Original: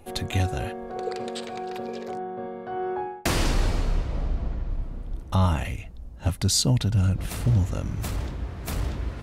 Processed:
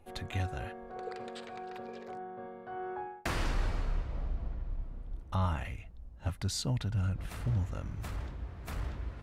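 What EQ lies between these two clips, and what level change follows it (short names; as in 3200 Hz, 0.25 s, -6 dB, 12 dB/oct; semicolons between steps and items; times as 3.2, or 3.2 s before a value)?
bell 270 Hz -4.5 dB 2.9 oct; dynamic EQ 1500 Hz, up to +4 dB, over -46 dBFS, Q 1; high shelf 3200 Hz -9 dB; -7.5 dB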